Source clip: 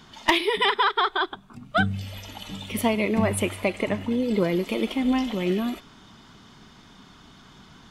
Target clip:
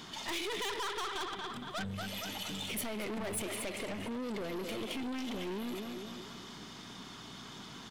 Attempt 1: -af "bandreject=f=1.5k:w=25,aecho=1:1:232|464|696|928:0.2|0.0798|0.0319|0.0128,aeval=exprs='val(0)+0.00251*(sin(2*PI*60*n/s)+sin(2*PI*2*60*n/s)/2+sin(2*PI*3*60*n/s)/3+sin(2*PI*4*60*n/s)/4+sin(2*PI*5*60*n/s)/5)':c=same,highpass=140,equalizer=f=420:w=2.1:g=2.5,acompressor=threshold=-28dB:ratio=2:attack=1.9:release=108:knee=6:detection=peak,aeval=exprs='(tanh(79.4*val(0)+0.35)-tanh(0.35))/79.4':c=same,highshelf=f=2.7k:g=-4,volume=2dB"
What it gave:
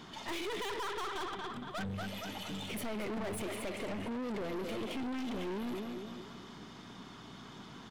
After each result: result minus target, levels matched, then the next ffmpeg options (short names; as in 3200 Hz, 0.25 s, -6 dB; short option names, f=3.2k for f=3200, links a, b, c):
compressor: peak gain reduction -4.5 dB; 4000 Hz band -3.5 dB
-af "bandreject=f=1.5k:w=25,aecho=1:1:232|464|696|928:0.2|0.0798|0.0319|0.0128,aeval=exprs='val(0)+0.00251*(sin(2*PI*60*n/s)+sin(2*PI*2*60*n/s)/2+sin(2*PI*3*60*n/s)/3+sin(2*PI*4*60*n/s)/4+sin(2*PI*5*60*n/s)/5)':c=same,highpass=140,equalizer=f=420:w=2.1:g=2.5,acompressor=threshold=-37dB:ratio=2:attack=1.9:release=108:knee=6:detection=peak,aeval=exprs='(tanh(79.4*val(0)+0.35)-tanh(0.35))/79.4':c=same,highshelf=f=2.7k:g=-4,volume=2dB"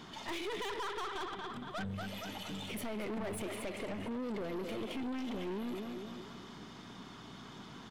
4000 Hz band -3.5 dB
-af "bandreject=f=1.5k:w=25,aecho=1:1:232|464|696|928:0.2|0.0798|0.0319|0.0128,aeval=exprs='val(0)+0.00251*(sin(2*PI*60*n/s)+sin(2*PI*2*60*n/s)/2+sin(2*PI*3*60*n/s)/3+sin(2*PI*4*60*n/s)/4+sin(2*PI*5*60*n/s)/5)':c=same,highpass=140,equalizer=f=420:w=2.1:g=2.5,acompressor=threshold=-37dB:ratio=2:attack=1.9:release=108:knee=6:detection=peak,aeval=exprs='(tanh(79.4*val(0)+0.35)-tanh(0.35))/79.4':c=same,highshelf=f=2.7k:g=5.5,volume=2dB"